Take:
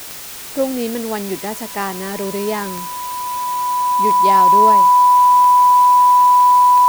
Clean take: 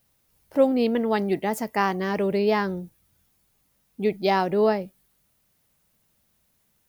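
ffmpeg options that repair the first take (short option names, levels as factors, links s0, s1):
-af "adeclick=t=4,bandreject=f=990:w=30,afwtdn=0.025,asetnsamples=n=441:p=0,asendcmd='4.92 volume volume -5.5dB',volume=1"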